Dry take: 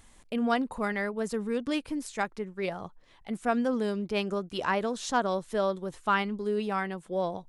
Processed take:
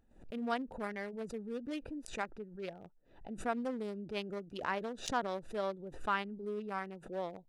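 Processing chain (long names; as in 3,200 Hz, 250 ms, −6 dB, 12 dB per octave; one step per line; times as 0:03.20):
adaptive Wiener filter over 41 samples
low-shelf EQ 210 Hz −8 dB
background raised ahead of every attack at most 110 dB per second
level −6.5 dB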